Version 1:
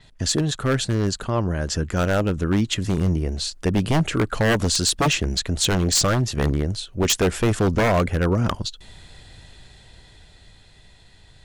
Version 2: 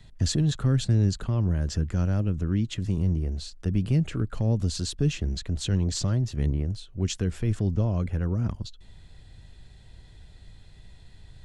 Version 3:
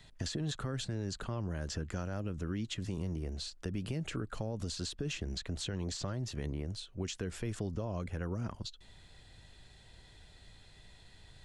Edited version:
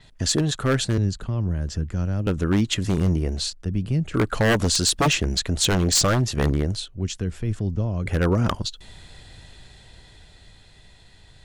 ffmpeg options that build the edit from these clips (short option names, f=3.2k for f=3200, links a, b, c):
-filter_complex "[1:a]asplit=3[a][b][c];[0:a]asplit=4[d][e][f][g];[d]atrim=end=0.982[h];[a]atrim=start=0.978:end=2.272[i];[e]atrim=start=2.268:end=3.532[j];[b]atrim=start=3.528:end=4.142[k];[f]atrim=start=4.138:end=6.882[l];[c]atrim=start=6.878:end=8.062[m];[g]atrim=start=8.058[n];[h][i]acrossfade=d=0.004:c1=hsin:c2=hsin[o];[o][j]acrossfade=d=0.004:c1=hsin:c2=hsin[p];[p][k]acrossfade=d=0.004:c1=hsin:c2=hsin[q];[q][l]acrossfade=d=0.004:c1=hsin:c2=hsin[r];[r][m]acrossfade=d=0.004:c1=hsin:c2=hsin[s];[s][n]acrossfade=d=0.004:c1=hsin:c2=hsin"